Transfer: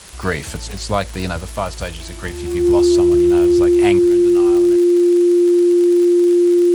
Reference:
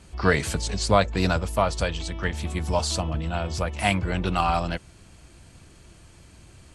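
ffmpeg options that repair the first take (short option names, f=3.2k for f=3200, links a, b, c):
-af "adeclick=t=4,bandreject=f=350:w=30,afwtdn=0.013,asetnsamples=n=441:p=0,asendcmd='3.99 volume volume 10.5dB',volume=0dB"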